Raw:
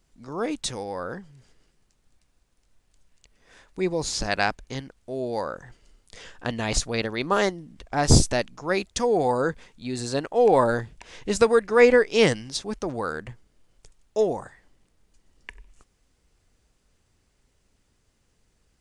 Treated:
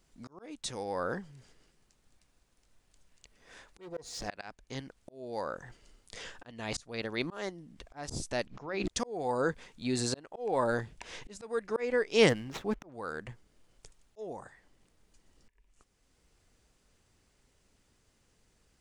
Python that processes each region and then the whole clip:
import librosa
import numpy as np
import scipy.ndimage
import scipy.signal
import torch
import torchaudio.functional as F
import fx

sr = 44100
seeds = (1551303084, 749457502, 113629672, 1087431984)

y = fx.chain(x, sr, fx.clip_hard(threshold_db=-25.5),
    fx.small_body(hz=(480.0, 700.0, 1900.0), ring_ms=80, db=12), at=(3.8, 4.28))
y = fx.chain(y, sr, fx.lowpass(hz=3800.0, slope=12),
    fx.hum_notches(base_hz=60, count=6),
    fx.env_flatten(amount_pct=100), at=(8.47, 8.88))
y = fx.chain(y, sr, fx.median_filter(points=9),
    fx.lowpass(hz=4000.0, slope=6), at=(12.29, 12.92))
y = fx.low_shelf(y, sr, hz=120.0, db=-4.5)
y = fx.auto_swell(y, sr, attack_ms=706.0)